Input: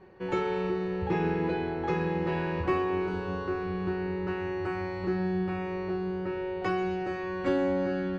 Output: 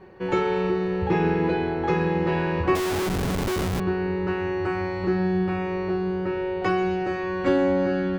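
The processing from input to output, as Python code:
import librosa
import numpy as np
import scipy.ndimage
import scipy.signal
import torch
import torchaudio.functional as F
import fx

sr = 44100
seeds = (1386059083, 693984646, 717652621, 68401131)

y = fx.schmitt(x, sr, flips_db=-31.5, at=(2.75, 3.8))
y = y * librosa.db_to_amplitude(6.0)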